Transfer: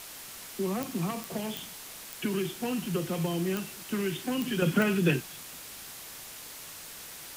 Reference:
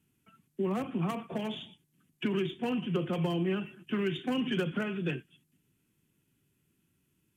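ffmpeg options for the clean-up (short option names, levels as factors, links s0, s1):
-af "adeclick=t=4,afwtdn=0.0071,asetnsamples=n=441:p=0,asendcmd='4.62 volume volume -8dB',volume=1"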